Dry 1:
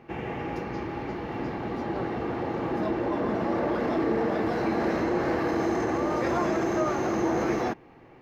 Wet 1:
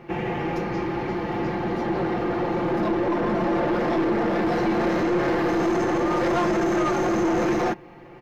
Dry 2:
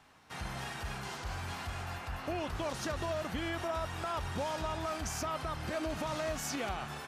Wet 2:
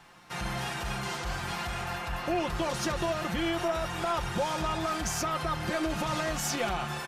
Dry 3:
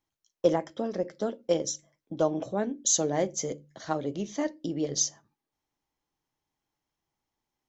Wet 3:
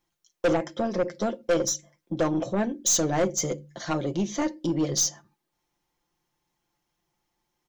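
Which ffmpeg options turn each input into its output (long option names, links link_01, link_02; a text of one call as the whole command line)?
ffmpeg -i in.wav -af "aecho=1:1:5.7:0.58,aeval=exprs='(tanh(15.8*val(0)+0.15)-tanh(0.15))/15.8':channel_layout=same,volume=6dB" out.wav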